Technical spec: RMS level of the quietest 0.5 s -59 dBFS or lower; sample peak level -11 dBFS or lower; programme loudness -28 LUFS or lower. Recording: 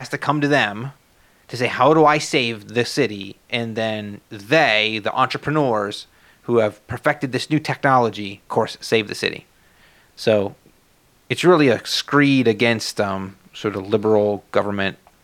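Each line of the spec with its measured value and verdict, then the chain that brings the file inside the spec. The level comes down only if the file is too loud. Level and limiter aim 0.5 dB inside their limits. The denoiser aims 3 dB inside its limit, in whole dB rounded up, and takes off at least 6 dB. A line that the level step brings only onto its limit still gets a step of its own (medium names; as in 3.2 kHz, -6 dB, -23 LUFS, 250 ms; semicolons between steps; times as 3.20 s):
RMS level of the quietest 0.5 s -57 dBFS: fail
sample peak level -2.0 dBFS: fail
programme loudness -19.5 LUFS: fail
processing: trim -9 dB; peak limiter -11.5 dBFS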